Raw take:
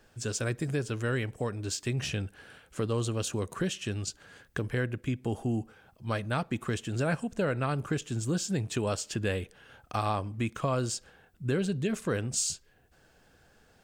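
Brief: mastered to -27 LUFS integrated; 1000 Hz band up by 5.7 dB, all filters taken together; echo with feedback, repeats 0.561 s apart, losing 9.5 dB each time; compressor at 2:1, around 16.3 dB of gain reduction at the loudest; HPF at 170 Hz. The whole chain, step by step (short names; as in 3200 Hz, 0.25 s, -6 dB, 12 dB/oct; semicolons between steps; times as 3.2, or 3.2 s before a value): HPF 170 Hz; bell 1000 Hz +7.5 dB; compressor 2:1, threshold -52 dBFS; feedback echo 0.561 s, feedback 33%, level -9.5 dB; gain +18.5 dB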